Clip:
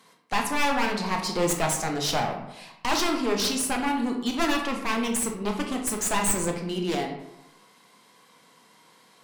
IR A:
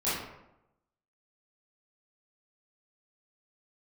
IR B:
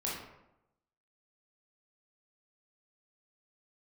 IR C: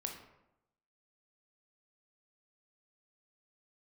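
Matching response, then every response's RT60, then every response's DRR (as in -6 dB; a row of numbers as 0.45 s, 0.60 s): C; 0.85 s, 0.85 s, 0.85 s; -12.5 dB, -6.0 dB, 2.0 dB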